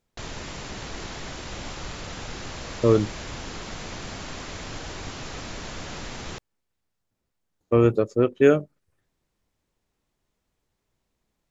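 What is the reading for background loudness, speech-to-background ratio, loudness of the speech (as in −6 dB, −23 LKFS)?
−36.0 LKFS, 15.0 dB, −21.0 LKFS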